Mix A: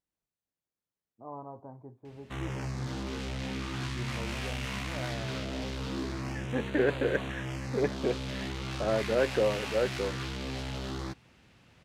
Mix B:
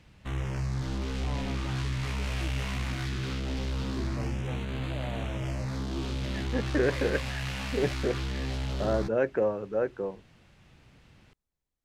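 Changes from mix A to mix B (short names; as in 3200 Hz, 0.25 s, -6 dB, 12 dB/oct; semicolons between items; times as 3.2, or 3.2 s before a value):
background: entry -2.05 s; master: remove HPF 150 Hz 6 dB/oct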